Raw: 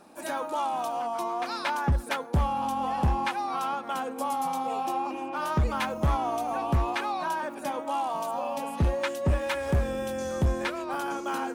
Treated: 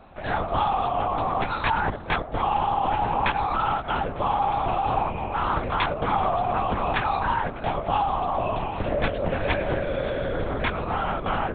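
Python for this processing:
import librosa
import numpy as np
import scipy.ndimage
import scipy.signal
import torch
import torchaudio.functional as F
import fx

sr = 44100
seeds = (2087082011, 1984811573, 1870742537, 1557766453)

p1 = scipy.signal.sosfilt(scipy.signal.butter(2, 300.0, 'highpass', fs=sr, output='sos'), x)
p2 = p1 + fx.echo_single(p1, sr, ms=894, db=-23.0, dry=0)
p3 = fx.lpc_vocoder(p2, sr, seeds[0], excitation='whisper', order=8)
y = p3 * librosa.db_to_amplitude(6.0)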